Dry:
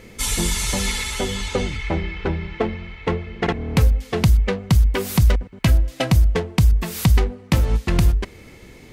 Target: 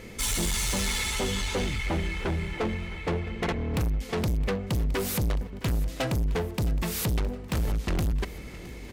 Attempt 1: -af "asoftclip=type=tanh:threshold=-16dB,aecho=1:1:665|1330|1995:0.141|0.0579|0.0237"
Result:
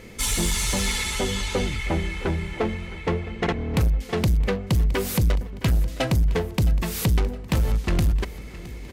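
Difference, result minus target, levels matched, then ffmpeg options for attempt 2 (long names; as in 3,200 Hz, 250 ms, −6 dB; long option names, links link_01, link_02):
soft clipping: distortion −6 dB
-af "asoftclip=type=tanh:threshold=-24dB,aecho=1:1:665|1330|1995:0.141|0.0579|0.0237"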